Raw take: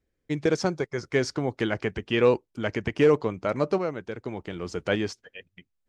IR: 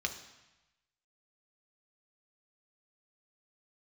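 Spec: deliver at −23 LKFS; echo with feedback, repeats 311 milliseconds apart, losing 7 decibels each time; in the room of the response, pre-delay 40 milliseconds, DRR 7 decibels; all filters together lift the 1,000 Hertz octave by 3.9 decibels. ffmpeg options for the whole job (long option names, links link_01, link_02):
-filter_complex "[0:a]equalizer=frequency=1000:width_type=o:gain=5,aecho=1:1:311|622|933|1244|1555:0.447|0.201|0.0905|0.0407|0.0183,asplit=2[link_01][link_02];[1:a]atrim=start_sample=2205,adelay=40[link_03];[link_02][link_03]afir=irnorm=-1:irlink=0,volume=-10.5dB[link_04];[link_01][link_04]amix=inputs=2:normalize=0,volume=2dB"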